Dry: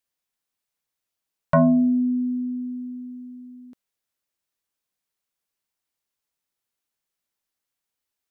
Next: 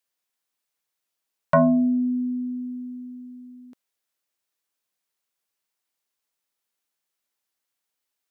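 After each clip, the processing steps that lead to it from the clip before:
low-shelf EQ 170 Hz −11 dB
level +2 dB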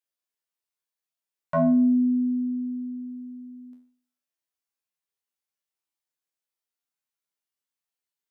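tuned comb filter 83 Hz, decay 0.49 s, harmonics all, mix 90%
level +1 dB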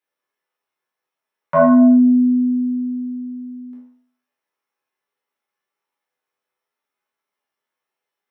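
convolution reverb RT60 0.65 s, pre-delay 3 ms, DRR −3 dB
level −1 dB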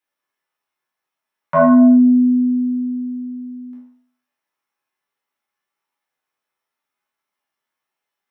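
parametric band 460 Hz −8.5 dB 0.45 octaves
level +1.5 dB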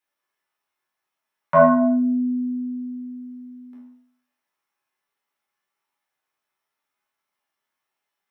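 mains-hum notches 50/100/150/200/250/300/350/400/450/500 Hz

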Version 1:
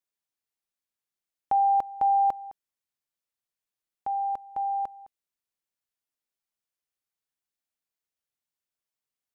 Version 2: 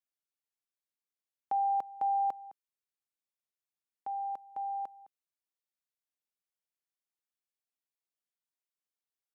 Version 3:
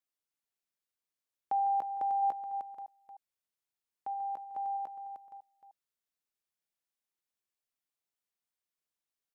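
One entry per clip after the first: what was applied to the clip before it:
high-pass filter 190 Hz; level −7.5 dB
delay that plays each chunk backwards 318 ms, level −13.5 dB; single-tap delay 306 ms −7.5 dB

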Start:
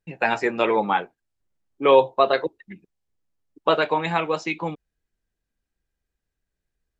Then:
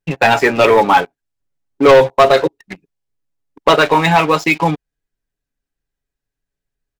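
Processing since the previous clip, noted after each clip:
comb filter 7.2 ms, depth 51%
leveller curve on the samples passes 3
in parallel at 0 dB: downward compressor, threshold −21 dBFS, peak gain reduction 14.5 dB
on the sum: level −1.5 dB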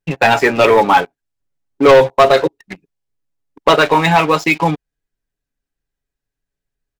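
no processing that can be heard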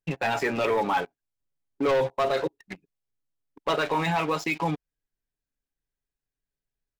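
brickwall limiter −10 dBFS, peak gain reduction 8.5 dB
level −8.5 dB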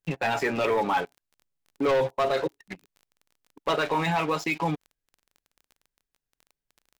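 surface crackle 20 per second −41 dBFS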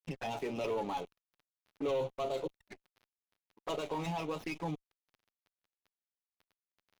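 dead-zone distortion −56.5 dBFS
flanger swept by the level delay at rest 10.3 ms, full sweep at −25 dBFS
windowed peak hold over 5 samples
level −8.5 dB

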